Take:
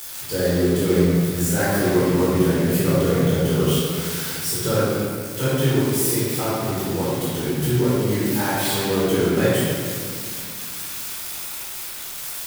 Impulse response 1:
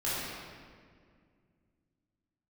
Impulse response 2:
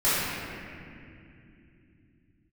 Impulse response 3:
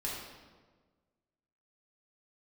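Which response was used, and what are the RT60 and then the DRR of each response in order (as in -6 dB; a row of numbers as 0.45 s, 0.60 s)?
1; 2.0 s, 2.7 s, 1.4 s; -10.5 dB, -15.0 dB, -5.5 dB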